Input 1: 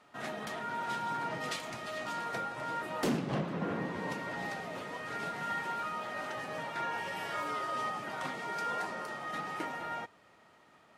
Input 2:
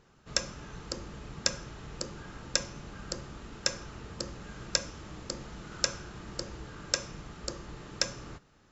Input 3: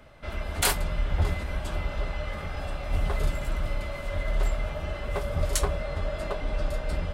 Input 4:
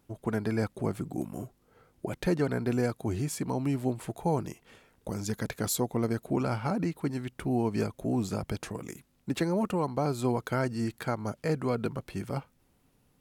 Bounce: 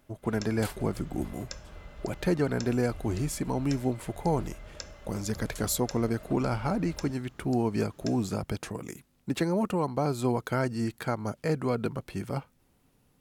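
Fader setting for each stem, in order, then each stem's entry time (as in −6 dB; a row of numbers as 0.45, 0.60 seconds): muted, −13.5 dB, −16.5 dB, +1.0 dB; muted, 0.05 s, 0.00 s, 0.00 s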